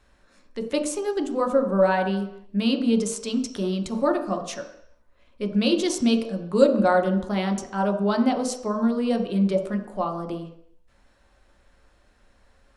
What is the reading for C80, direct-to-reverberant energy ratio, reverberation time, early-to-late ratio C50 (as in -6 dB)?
11.5 dB, 3.0 dB, 0.70 s, 9.0 dB